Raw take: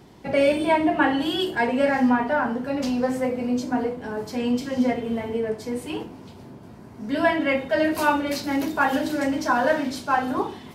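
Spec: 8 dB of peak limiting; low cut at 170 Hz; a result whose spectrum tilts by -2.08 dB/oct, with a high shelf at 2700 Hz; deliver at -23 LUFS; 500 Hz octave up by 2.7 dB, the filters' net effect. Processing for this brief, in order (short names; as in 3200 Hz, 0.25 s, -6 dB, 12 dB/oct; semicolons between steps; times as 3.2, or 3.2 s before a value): HPF 170 Hz; bell 500 Hz +3 dB; high shelf 2700 Hz +5.5 dB; gain +1 dB; limiter -13 dBFS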